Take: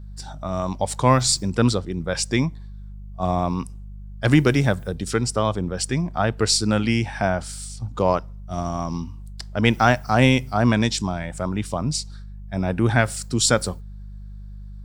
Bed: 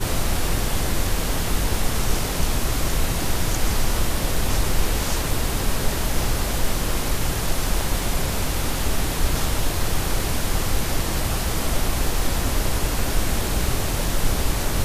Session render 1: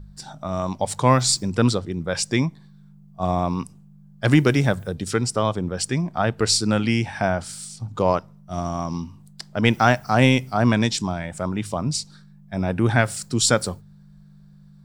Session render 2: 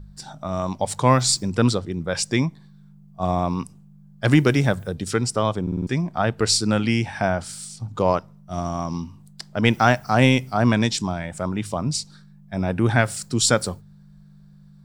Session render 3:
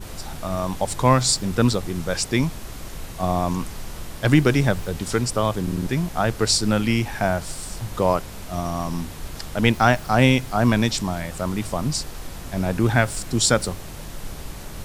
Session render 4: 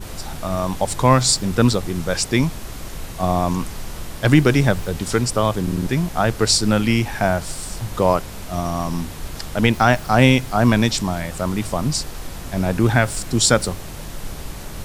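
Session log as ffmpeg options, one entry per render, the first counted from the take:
-af "bandreject=f=50:t=h:w=4,bandreject=f=100:t=h:w=4"
-filter_complex "[0:a]asplit=6[s0][s1][s2][s3][s4][s5];[s0]atrim=end=5.672[s6];[s1]atrim=start=5.618:end=5.672[s7];[s2]atrim=start=5.618:end=5.672[s8];[s3]atrim=start=5.618:end=5.672[s9];[s4]atrim=start=5.618:end=5.672[s10];[s5]atrim=start=5.868[s11];[s6][s7]acrossfade=d=0.004:c1=hsin:c2=hsin[s12];[s12][s8]acrossfade=d=0.004:c1=hsin:c2=hsin[s13];[s13][s9]acrossfade=d=0.004:c1=hsin:c2=hsin[s14];[s14][s10]acrossfade=d=0.004:c1=hsin:c2=hsin[s15];[s15][s11]acrossfade=d=0.004:c1=hsin:c2=hsin"
-filter_complex "[1:a]volume=0.224[s0];[0:a][s0]amix=inputs=2:normalize=0"
-af "volume=1.41,alimiter=limit=0.794:level=0:latency=1"

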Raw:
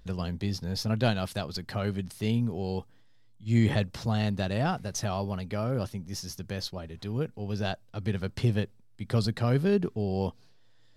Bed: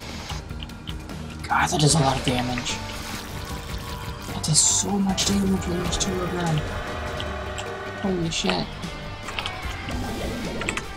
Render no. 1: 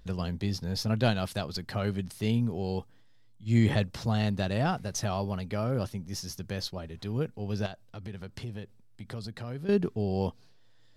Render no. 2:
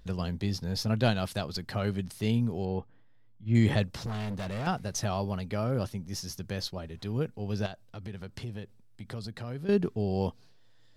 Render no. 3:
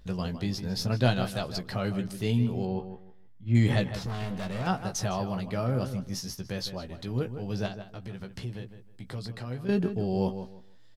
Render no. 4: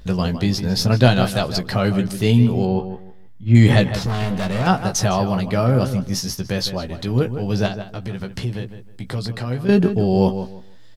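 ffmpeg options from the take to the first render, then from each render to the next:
-filter_complex "[0:a]asettb=1/sr,asplit=3[s0][s1][s2];[s0]atrim=end=7.664[s3];[s1]atrim=start=7.66:end=9.69,asetpts=PTS-STARTPTS,afade=t=in:d=0.004:c=qsin,afade=t=out:st=2.026:d=0.004:c=qsin,acompressor=threshold=0.01:ratio=2.5:attack=3.2:release=140:knee=1:detection=peak[s4];[s2]atrim=start=9.686[s5];[s3][s4]acrossfade=d=0.004:c1=hsin:c2=qsin[s6];[s6][s5]acrossfade=d=0.004:c1=qsin:c2=hsin"
-filter_complex "[0:a]asettb=1/sr,asplit=3[s0][s1][s2];[s0]atrim=end=2.654[s3];[s1]atrim=start=2.65:end=3.55,asetpts=PTS-STARTPTS,afade=t=in:d=0.004:c=qsin,afade=t=out:st=0.896:d=0.004:c=qsin,lowpass=2100[s4];[s2]atrim=start=3.546[s5];[s3][s4]acrossfade=d=0.004:c1=hsin:c2=qsin[s6];[s6][s5]acrossfade=d=0.004:c1=qsin:c2=hsin,asettb=1/sr,asplit=3[s7][s8][s9];[s7]atrim=end=4.064[s10];[s8]atrim=start=4.06:end=4.67,asetpts=PTS-STARTPTS,afade=t=in:d=0.004:c=qsin,afade=t=out:st=0.606:d=0.004:c=qsin,volume=37.6,asoftclip=hard,volume=0.0266[s11];[s9]atrim=start=4.666[s12];[s10][s11]acrossfade=d=0.004:c1=hsin:c2=qsin[s13];[s13][s12]acrossfade=d=0.004:c1=qsin:c2=hsin"
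-filter_complex "[0:a]asplit=2[s0][s1];[s1]adelay=16,volume=0.447[s2];[s0][s2]amix=inputs=2:normalize=0,asplit=2[s3][s4];[s4]adelay=157,lowpass=f=2700:p=1,volume=0.316,asplit=2[s5][s6];[s6]adelay=157,lowpass=f=2700:p=1,volume=0.24,asplit=2[s7][s8];[s8]adelay=157,lowpass=f=2700:p=1,volume=0.24[s9];[s3][s5][s7][s9]amix=inputs=4:normalize=0"
-af "volume=3.76,alimiter=limit=0.891:level=0:latency=1"

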